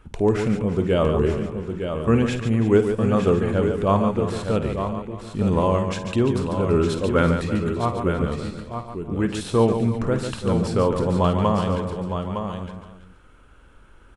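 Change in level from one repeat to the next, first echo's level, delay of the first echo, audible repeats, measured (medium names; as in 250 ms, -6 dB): no regular repeats, -11.5 dB, 52 ms, 9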